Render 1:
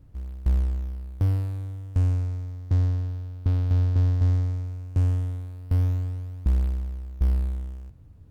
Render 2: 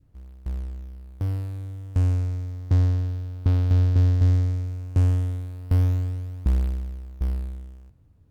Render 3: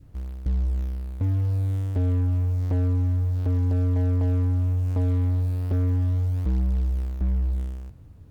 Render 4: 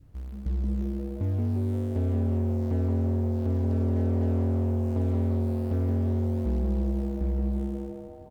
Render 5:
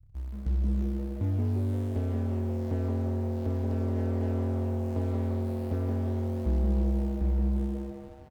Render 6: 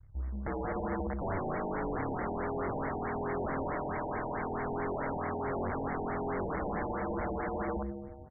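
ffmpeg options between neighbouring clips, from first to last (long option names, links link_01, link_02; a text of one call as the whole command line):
ffmpeg -i in.wav -af "adynamicequalizer=threshold=0.002:dfrequency=950:dqfactor=1.3:tfrequency=950:tqfactor=1.3:attack=5:release=100:ratio=0.375:range=3:mode=cutabove:tftype=bell,dynaudnorm=framelen=300:gausssize=11:maxgain=12.5dB,lowshelf=frequency=110:gain=-4,volume=-5.5dB" out.wav
ffmpeg -i in.wav -filter_complex "[0:a]asplit=2[link_01][link_02];[link_02]acompressor=threshold=-26dB:ratio=6,volume=-1dB[link_03];[link_01][link_03]amix=inputs=2:normalize=0,volume=25dB,asoftclip=hard,volume=-25dB,volume=4.5dB" out.wav
ffmpeg -i in.wav -filter_complex "[0:a]asplit=7[link_01][link_02][link_03][link_04][link_05][link_06][link_07];[link_02]adelay=174,afreqshift=140,volume=-6dB[link_08];[link_03]adelay=348,afreqshift=280,volume=-12.4dB[link_09];[link_04]adelay=522,afreqshift=420,volume=-18.8dB[link_10];[link_05]adelay=696,afreqshift=560,volume=-25.1dB[link_11];[link_06]adelay=870,afreqshift=700,volume=-31.5dB[link_12];[link_07]adelay=1044,afreqshift=840,volume=-37.9dB[link_13];[link_01][link_08][link_09][link_10][link_11][link_12][link_13]amix=inputs=7:normalize=0,volume=-4.5dB" out.wav
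ffmpeg -i in.wav -filter_complex "[0:a]acrossover=split=130[link_01][link_02];[link_02]aeval=exprs='sgn(val(0))*max(abs(val(0))-0.0015,0)':channel_layout=same[link_03];[link_01][link_03]amix=inputs=2:normalize=0,asplit=2[link_04][link_05];[link_05]adelay=28,volume=-8.5dB[link_06];[link_04][link_06]amix=inputs=2:normalize=0" out.wav
ffmpeg -i in.wav -af "acrusher=bits=5:mode=log:mix=0:aa=0.000001,aeval=exprs='(mod(26.6*val(0)+1,2)-1)/26.6':channel_layout=same,afftfilt=real='re*lt(b*sr/1024,920*pow(2300/920,0.5+0.5*sin(2*PI*4.6*pts/sr)))':imag='im*lt(b*sr/1024,920*pow(2300/920,0.5+0.5*sin(2*PI*4.6*pts/sr)))':win_size=1024:overlap=0.75" out.wav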